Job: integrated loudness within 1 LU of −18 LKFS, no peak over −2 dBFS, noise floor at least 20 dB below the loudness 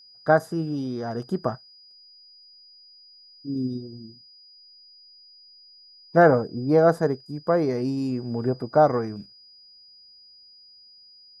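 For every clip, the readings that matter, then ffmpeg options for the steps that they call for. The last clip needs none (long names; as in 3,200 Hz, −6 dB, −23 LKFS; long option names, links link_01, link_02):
interfering tone 4,900 Hz; level of the tone −49 dBFS; integrated loudness −23.5 LKFS; sample peak −4.5 dBFS; target loudness −18.0 LKFS
→ -af "bandreject=frequency=4900:width=30"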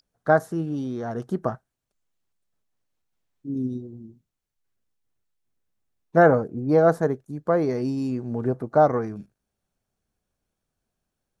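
interfering tone none found; integrated loudness −23.5 LKFS; sample peak −4.5 dBFS; target loudness −18.0 LKFS
→ -af "volume=5.5dB,alimiter=limit=-2dB:level=0:latency=1"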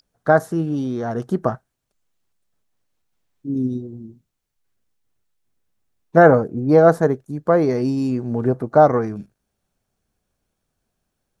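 integrated loudness −18.5 LKFS; sample peak −2.0 dBFS; background noise floor −77 dBFS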